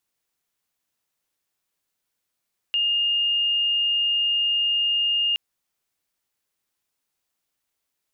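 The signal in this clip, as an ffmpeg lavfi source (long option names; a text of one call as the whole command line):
ffmpeg -f lavfi -i "aevalsrc='0.112*sin(2*PI*2830*t)':duration=2.62:sample_rate=44100" out.wav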